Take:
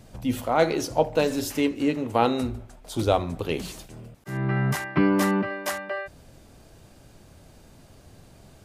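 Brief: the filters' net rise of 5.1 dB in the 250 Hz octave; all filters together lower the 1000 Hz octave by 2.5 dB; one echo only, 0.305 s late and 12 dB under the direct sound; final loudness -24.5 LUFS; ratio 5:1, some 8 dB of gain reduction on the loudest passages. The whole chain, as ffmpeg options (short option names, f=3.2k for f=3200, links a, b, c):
-af "equalizer=f=250:t=o:g=6.5,equalizer=f=1k:t=o:g=-4,acompressor=threshold=-20dB:ratio=5,aecho=1:1:305:0.251,volume=2dB"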